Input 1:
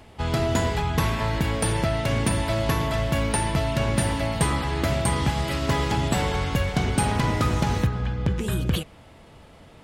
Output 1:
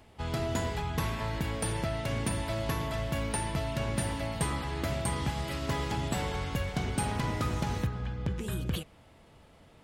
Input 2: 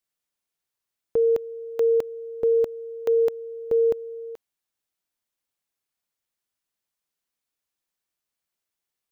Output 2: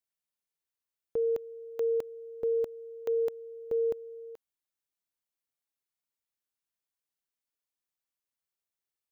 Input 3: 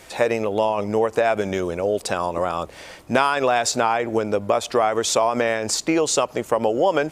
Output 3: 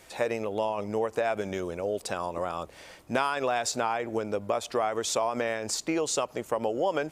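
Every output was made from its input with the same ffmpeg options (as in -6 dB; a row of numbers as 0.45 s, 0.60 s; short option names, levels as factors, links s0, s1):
-af "highshelf=f=11000:g=3.5,volume=0.376"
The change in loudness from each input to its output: -8.5 LU, -8.5 LU, -8.5 LU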